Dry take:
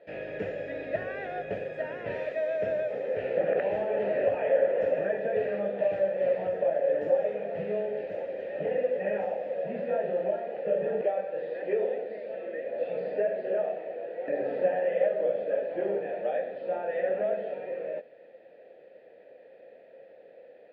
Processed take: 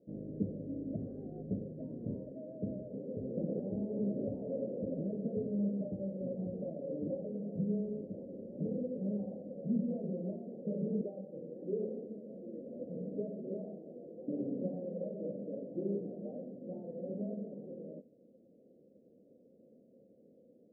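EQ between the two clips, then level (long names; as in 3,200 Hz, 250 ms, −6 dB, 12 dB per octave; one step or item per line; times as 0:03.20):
transistor ladder low-pass 280 Hz, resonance 50%
+11.0 dB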